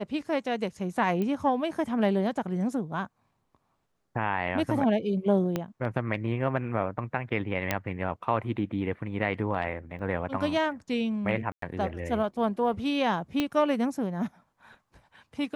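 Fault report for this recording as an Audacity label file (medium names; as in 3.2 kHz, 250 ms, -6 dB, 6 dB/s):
1.220000	1.220000	pop -20 dBFS
5.560000	5.560000	pop -15 dBFS
7.710000	7.710000	pop -10 dBFS
9.990000	9.990000	dropout 2.9 ms
11.520000	11.620000	dropout 103 ms
13.400000	13.400000	pop -13 dBFS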